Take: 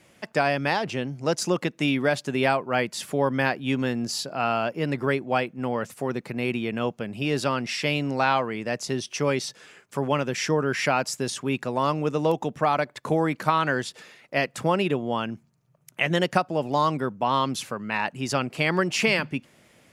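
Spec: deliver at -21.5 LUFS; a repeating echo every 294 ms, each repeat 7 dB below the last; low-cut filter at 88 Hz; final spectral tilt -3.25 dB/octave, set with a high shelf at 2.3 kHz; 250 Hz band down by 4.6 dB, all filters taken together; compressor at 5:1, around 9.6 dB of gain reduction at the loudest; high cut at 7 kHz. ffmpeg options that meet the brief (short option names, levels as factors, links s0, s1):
-af "highpass=88,lowpass=7000,equalizer=f=250:t=o:g=-6,highshelf=f=2300:g=7.5,acompressor=threshold=0.0447:ratio=5,aecho=1:1:294|588|882|1176|1470:0.447|0.201|0.0905|0.0407|0.0183,volume=2.82"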